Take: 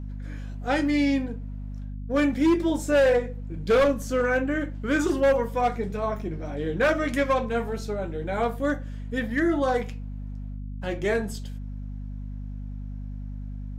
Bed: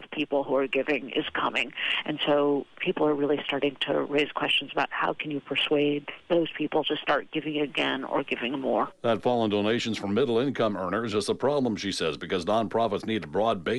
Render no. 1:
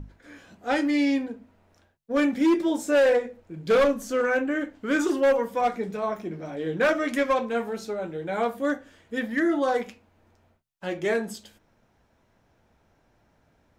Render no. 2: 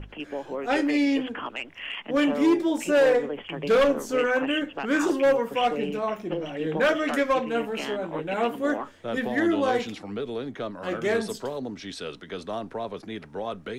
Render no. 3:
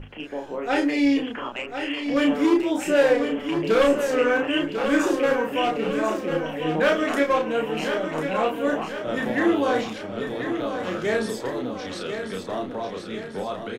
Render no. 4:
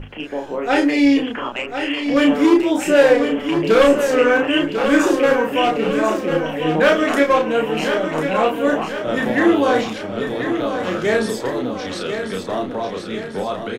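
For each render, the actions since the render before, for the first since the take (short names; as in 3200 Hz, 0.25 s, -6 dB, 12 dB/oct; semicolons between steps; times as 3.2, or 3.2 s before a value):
notches 50/100/150/200/250 Hz
add bed -7.5 dB
doubler 32 ms -3.5 dB; feedback echo 1.045 s, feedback 51%, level -8 dB
gain +6 dB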